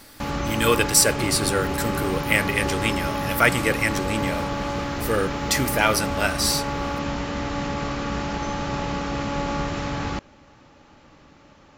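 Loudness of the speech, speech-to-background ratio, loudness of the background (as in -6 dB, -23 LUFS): -22.5 LUFS, 5.0 dB, -27.5 LUFS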